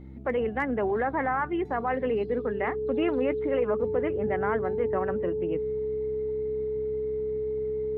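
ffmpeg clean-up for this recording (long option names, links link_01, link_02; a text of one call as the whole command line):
ffmpeg -i in.wav -af "bandreject=frequency=66:width_type=h:width=4,bandreject=frequency=132:width_type=h:width=4,bandreject=frequency=198:width_type=h:width=4,bandreject=frequency=264:width_type=h:width=4,bandreject=frequency=330:width_type=h:width=4,bandreject=frequency=430:width=30" out.wav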